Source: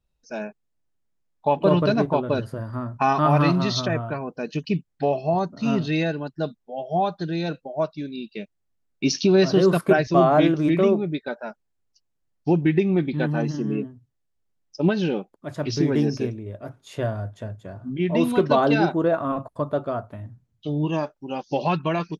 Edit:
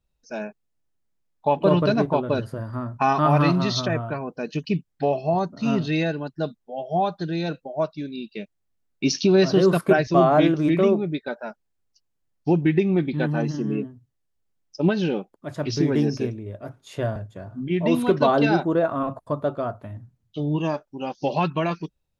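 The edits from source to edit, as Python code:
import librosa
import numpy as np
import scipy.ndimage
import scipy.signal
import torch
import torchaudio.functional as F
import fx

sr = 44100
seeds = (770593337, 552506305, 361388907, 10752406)

y = fx.edit(x, sr, fx.cut(start_s=17.16, length_s=0.29), tone=tone)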